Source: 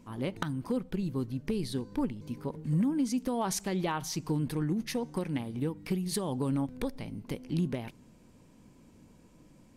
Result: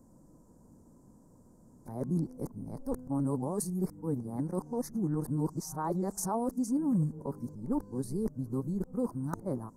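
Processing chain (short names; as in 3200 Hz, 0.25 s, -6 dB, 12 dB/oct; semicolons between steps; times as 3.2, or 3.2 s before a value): whole clip reversed; Chebyshev band-stop 1000–7500 Hz, order 2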